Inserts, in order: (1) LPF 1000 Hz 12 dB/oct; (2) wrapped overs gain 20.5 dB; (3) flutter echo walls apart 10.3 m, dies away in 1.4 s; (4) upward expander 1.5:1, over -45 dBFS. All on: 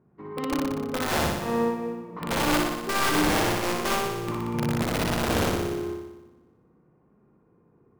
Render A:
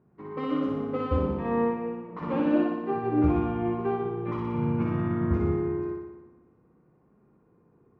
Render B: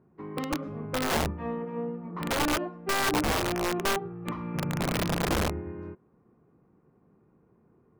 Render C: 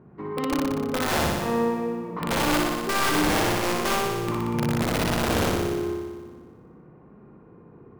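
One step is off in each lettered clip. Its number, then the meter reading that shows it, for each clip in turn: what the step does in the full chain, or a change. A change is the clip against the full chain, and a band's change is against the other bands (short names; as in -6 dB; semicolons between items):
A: 2, crest factor change +2.0 dB; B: 3, crest factor change -4.5 dB; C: 4, momentary loudness spread change -3 LU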